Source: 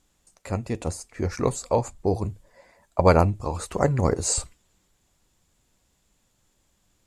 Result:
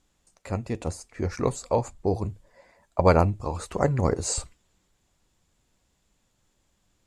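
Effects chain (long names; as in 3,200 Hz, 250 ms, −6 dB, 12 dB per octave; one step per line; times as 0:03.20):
high-shelf EQ 10,000 Hz −8.5 dB
level −1.5 dB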